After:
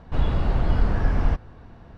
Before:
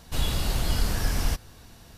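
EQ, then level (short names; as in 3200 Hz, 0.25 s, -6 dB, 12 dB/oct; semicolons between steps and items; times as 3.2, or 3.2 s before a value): LPF 1400 Hz 12 dB/oct; +5.0 dB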